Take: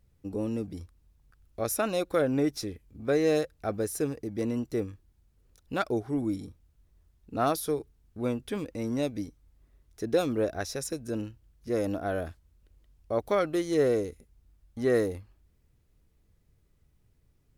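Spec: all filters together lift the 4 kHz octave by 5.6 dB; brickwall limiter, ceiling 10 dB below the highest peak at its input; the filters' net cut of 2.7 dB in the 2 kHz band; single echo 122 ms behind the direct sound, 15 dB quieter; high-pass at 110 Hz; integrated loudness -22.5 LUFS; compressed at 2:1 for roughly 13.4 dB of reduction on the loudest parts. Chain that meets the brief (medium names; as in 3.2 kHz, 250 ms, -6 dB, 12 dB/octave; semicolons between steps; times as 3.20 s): high-pass 110 Hz; peaking EQ 2 kHz -5.5 dB; peaking EQ 4 kHz +8 dB; compression 2:1, threshold -46 dBFS; peak limiter -36 dBFS; delay 122 ms -15 dB; trim +23.5 dB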